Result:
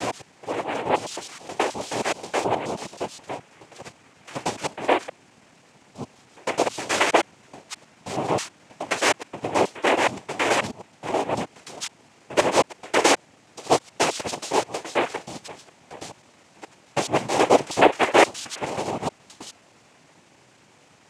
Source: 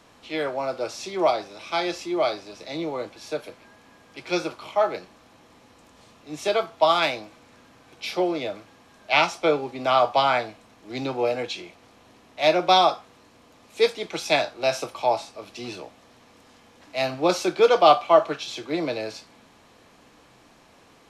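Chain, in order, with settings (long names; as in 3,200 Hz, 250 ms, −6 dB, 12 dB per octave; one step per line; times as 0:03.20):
slices reordered back to front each 106 ms, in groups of 4
cochlear-implant simulation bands 4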